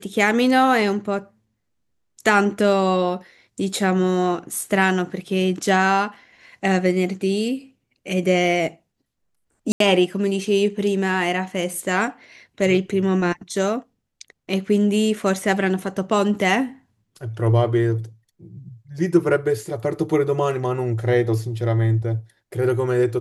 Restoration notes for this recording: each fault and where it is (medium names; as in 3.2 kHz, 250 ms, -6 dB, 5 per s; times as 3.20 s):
9.72–9.80 s: dropout 83 ms